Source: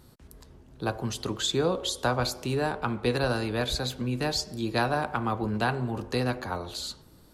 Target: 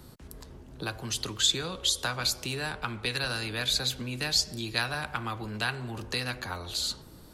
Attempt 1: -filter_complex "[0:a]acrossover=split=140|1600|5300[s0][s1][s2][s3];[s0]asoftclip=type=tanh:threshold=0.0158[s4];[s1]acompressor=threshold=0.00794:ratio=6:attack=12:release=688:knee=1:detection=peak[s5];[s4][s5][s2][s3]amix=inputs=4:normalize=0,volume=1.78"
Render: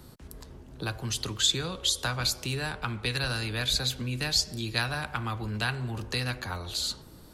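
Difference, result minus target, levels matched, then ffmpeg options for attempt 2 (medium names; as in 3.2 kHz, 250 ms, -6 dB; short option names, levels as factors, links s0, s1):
saturation: distortion -7 dB
-filter_complex "[0:a]acrossover=split=140|1600|5300[s0][s1][s2][s3];[s0]asoftclip=type=tanh:threshold=0.00531[s4];[s1]acompressor=threshold=0.00794:ratio=6:attack=12:release=688:knee=1:detection=peak[s5];[s4][s5][s2][s3]amix=inputs=4:normalize=0,volume=1.78"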